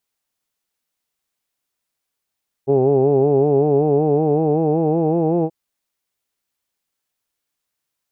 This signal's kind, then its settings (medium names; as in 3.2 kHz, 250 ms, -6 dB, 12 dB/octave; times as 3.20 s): formant vowel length 2.83 s, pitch 133 Hz, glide +4 st, F1 410 Hz, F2 780 Hz, F3 2.6 kHz